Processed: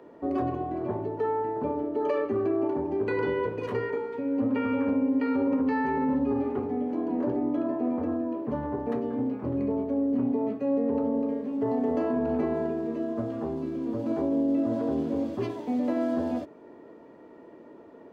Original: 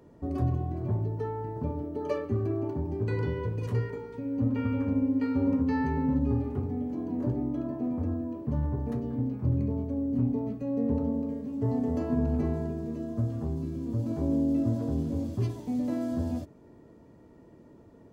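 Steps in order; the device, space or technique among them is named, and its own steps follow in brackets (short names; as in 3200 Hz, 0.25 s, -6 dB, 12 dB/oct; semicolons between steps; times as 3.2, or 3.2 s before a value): DJ mixer with the lows and highs turned down (three-band isolator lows -23 dB, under 270 Hz, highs -16 dB, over 3500 Hz; limiter -27.5 dBFS, peak gain reduction 8.5 dB); gain +9 dB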